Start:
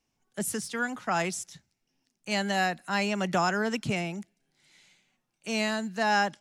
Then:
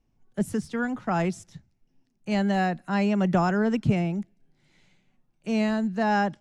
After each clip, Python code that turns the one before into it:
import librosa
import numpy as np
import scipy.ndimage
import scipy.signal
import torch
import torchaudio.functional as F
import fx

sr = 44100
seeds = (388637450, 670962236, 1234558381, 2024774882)

y = fx.tilt_eq(x, sr, slope=-3.5)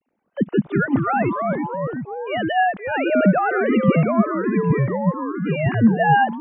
y = fx.sine_speech(x, sr)
y = fx.echo_pitch(y, sr, ms=87, semitones=-3, count=3, db_per_echo=-3.0)
y = F.gain(torch.from_numpy(y), 5.0).numpy()